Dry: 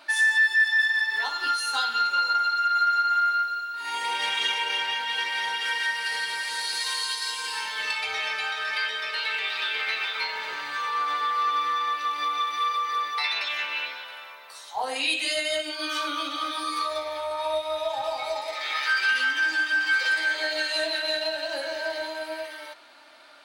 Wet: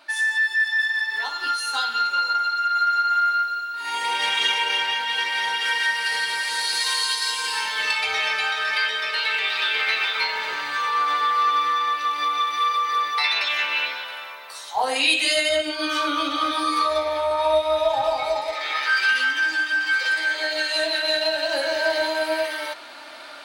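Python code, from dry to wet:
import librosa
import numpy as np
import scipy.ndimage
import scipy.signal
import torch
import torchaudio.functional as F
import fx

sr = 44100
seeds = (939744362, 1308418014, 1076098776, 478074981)

y = fx.tilt_eq(x, sr, slope=-1.5, at=(15.49, 18.93))
y = fx.rider(y, sr, range_db=10, speed_s=2.0)
y = F.gain(torch.from_numpy(y), 3.5).numpy()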